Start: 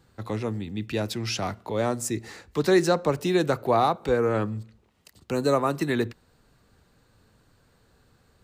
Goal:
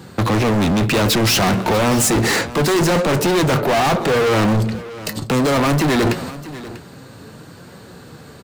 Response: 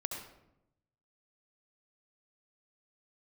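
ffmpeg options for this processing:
-af "agate=range=0.251:threshold=0.002:ratio=16:detection=peak,highpass=140,lowshelf=f=430:g=6,areverse,acompressor=threshold=0.0398:ratio=12,areverse,apsyclip=26.6,flanger=delay=5.2:depth=2.5:regen=73:speed=0.64:shape=triangular,asoftclip=type=hard:threshold=0.119,aecho=1:1:643:0.0841,aeval=exprs='0.133*(cos(1*acos(clip(val(0)/0.133,-1,1)))-cos(1*PI/2))+0.0188*(cos(5*acos(clip(val(0)/0.133,-1,1)))-cos(5*PI/2))':c=same,volume=1.68"

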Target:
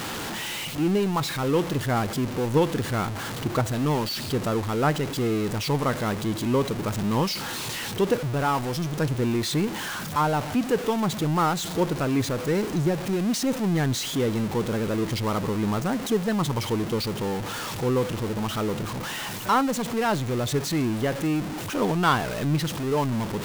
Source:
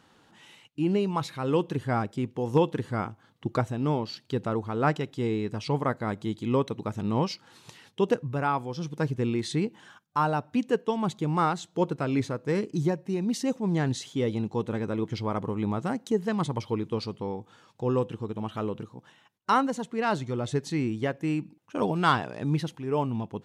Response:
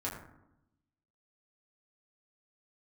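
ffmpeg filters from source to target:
-af "aeval=exprs='val(0)+0.5*0.0473*sgn(val(0))':c=same"

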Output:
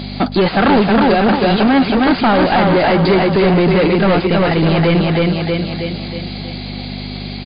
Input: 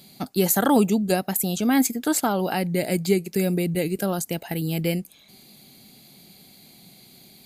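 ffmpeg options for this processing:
-filter_complex "[0:a]lowshelf=f=160:g=9,aecho=1:1:319|638|957|1276|1595|1914:0.562|0.264|0.124|0.0584|0.0274|0.0129,aeval=exprs='val(0)+0.02*(sin(2*PI*50*n/s)+sin(2*PI*2*50*n/s)/2+sin(2*PI*3*50*n/s)/3+sin(2*PI*4*50*n/s)/4+sin(2*PI*5*50*n/s)/5)':c=same,asplit=2[s0][s1];[s1]highpass=f=720:p=1,volume=44.7,asoftclip=type=tanh:threshold=0.668[s2];[s0][s2]amix=inputs=2:normalize=0,lowpass=f=2200:p=1,volume=0.501" -ar 11025 -c:a libmp3lame -b:a 32k

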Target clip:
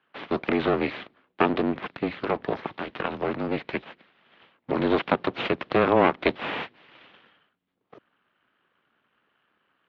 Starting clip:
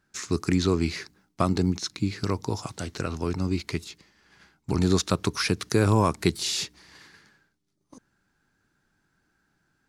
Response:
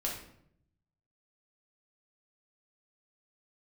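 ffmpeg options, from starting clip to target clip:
-af "aeval=exprs='abs(val(0))':c=same,highpass=f=300:t=q:w=0.5412,highpass=f=300:t=q:w=1.307,lowpass=f=3400:t=q:w=0.5176,lowpass=f=3400:t=q:w=0.7071,lowpass=f=3400:t=q:w=1.932,afreqshift=-120,volume=2.11"

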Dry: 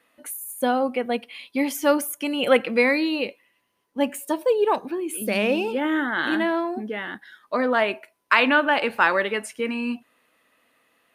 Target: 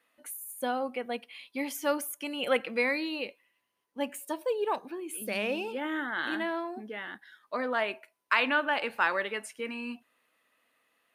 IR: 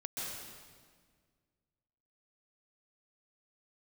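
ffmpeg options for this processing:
-af "lowshelf=f=450:g=-6,volume=0.447"

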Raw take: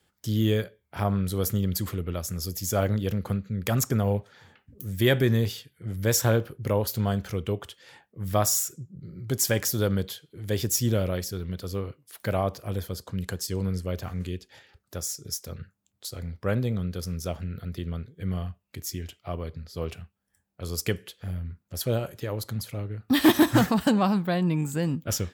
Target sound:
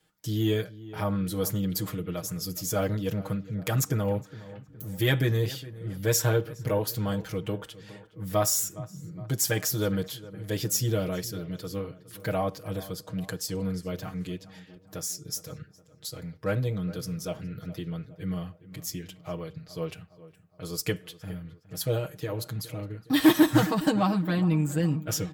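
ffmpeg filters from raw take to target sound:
-filter_complex "[0:a]aecho=1:1:6.4:0.96,asplit=2[s0][s1];[s1]asoftclip=type=tanh:threshold=0.119,volume=0.251[s2];[s0][s2]amix=inputs=2:normalize=0,asplit=2[s3][s4];[s4]adelay=414,lowpass=f=2000:p=1,volume=0.141,asplit=2[s5][s6];[s6]adelay=414,lowpass=f=2000:p=1,volume=0.53,asplit=2[s7][s8];[s8]adelay=414,lowpass=f=2000:p=1,volume=0.53,asplit=2[s9][s10];[s10]adelay=414,lowpass=f=2000:p=1,volume=0.53,asplit=2[s11][s12];[s12]adelay=414,lowpass=f=2000:p=1,volume=0.53[s13];[s3][s5][s7][s9][s11][s13]amix=inputs=6:normalize=0,volume=0.531"

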